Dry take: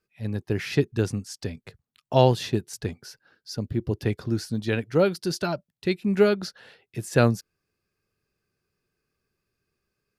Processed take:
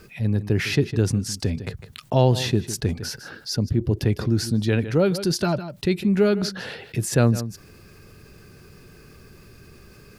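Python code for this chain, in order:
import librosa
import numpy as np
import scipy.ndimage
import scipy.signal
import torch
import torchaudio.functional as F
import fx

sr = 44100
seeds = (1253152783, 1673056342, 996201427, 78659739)

y = fx.low_shelf(x, sr, hz=330.0, db=7.5)
y = y + 10.0 ** (-23.0 / 20.0) * np.pad(y, (int(155 * sr / 1000.0), 0))[:len(y)]
y = fx.env_flatten(y, sr, amount_pct=50)
y = F.gain(torch.from_numpy(y), -4.5).numpy()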